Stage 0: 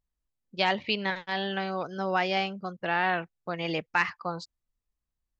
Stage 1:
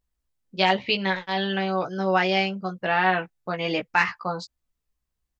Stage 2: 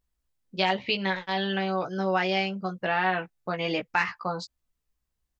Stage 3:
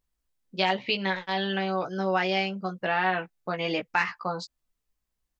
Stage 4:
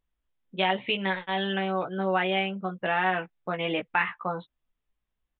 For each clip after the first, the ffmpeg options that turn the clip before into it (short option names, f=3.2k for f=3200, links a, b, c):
-filter_complex "[0:a]asplit=2[a][b];[b]adelay=16,volume=-4.5dB[c];[a][c]amix=inputs=2:normalize=0,volume=3.5dB"
-af "acompressor=threshold=-28dB:ratio=1.5"
-af "equalizer=f=83:t=o:w=0.66:g=-12.5"
-af "aresample=8000,aresample=44100"